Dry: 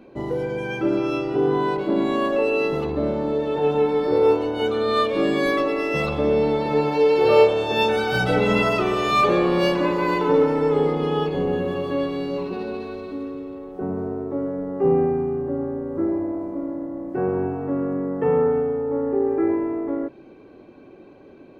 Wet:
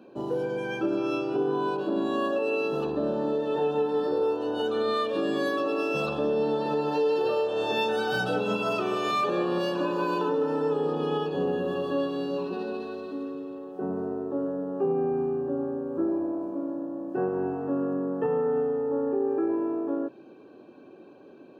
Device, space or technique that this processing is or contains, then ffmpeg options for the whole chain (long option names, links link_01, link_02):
PA system with an anti-feedback notch: -af "highpass=170,asuperstop=centerf=2100:order=8:qfactor=4.1,alimiter=limit=-15dB:level=0:latency=1:release=209,volume=-3dB"